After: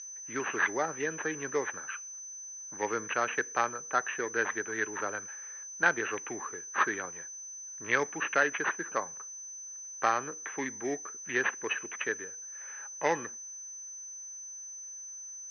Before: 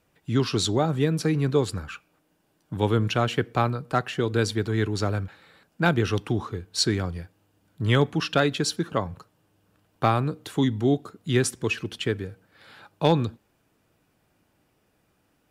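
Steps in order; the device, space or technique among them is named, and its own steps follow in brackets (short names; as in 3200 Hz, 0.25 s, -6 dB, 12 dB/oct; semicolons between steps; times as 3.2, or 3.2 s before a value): toy sound module (decimation joined by straight lines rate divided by 8×; pulse-width modulation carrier 6100 Hz; speaker cabinet 580–5000 Hz, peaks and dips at 690 Hz -5 dB, 1700 Hz +10 dB, 2600 Hz +5 dB); gain -2 dB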